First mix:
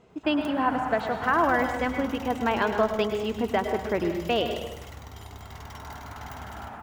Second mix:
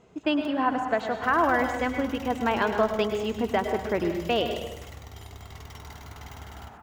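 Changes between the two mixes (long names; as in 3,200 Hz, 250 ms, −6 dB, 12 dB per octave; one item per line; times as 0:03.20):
speech: add parametric band 6,700 Hz +6.5 dB 0.25 octaves
first sound −7.5 dB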